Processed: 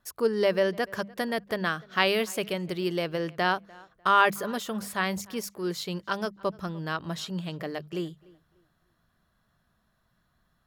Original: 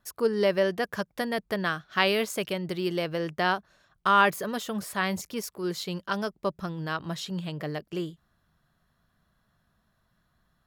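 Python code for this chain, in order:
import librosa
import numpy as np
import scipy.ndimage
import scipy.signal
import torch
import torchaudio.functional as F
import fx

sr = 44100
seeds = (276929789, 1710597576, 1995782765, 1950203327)

y = fx.hum_notches(x, sr, base_hz=50, count=4)
y = fx.echo_tape(y, sr, ms=297, feedback_pct=29, wet_db=-23, lp_hz=2700.0, drive_db=8.0, wow_cents=17)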